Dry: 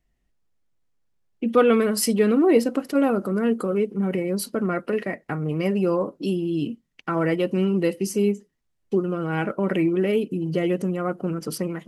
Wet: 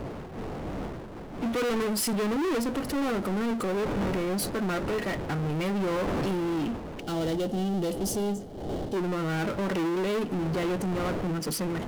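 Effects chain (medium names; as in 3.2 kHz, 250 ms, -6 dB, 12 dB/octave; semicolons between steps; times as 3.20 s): wind noise 440 Hz -36 dBFS; saturation -24 dBFS, distortion -8 dB; power-law waveshaper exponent 0.5; time-frequency box 7.01–8.96 s, 880–2800 Hz -9 dB; trim -1.5 dB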